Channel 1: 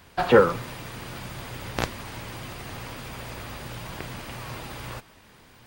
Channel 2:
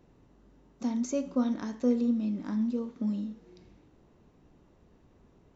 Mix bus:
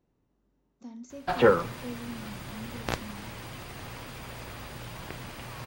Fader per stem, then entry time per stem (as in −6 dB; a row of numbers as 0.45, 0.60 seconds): −4.0, −13.5 decibels; 1.10, 0.00 seconds